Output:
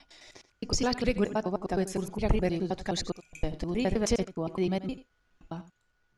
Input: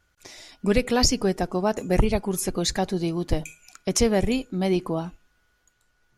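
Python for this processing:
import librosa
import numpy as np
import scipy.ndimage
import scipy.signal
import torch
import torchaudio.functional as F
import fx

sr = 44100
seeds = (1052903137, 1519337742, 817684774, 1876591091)

p1 = fx.block_reorder(x, sr, ms=104.0, group=6)
p2 = fx.air_absorb(p1, sr, metres=58.0)
p3 = p2 + fx.echo_single(p2, sr, ms=86, db=-15.0, dry=0)
y = F.gain(torch.from_numpy(p3), -5.5).numpy()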